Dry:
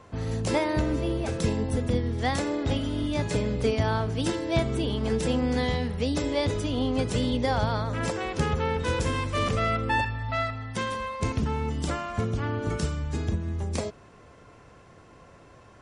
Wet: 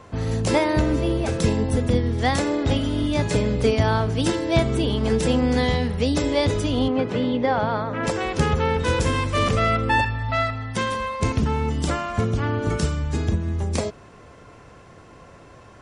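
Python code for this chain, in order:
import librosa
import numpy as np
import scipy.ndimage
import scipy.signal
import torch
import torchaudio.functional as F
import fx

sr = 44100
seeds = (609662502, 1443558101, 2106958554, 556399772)

y = fx.bandpass_edges(x, sr, low_hz=170.0, high_hz=2400.0, at=(6.88, 8.07))
y = y * librosa.db_to_amplitude(5.5)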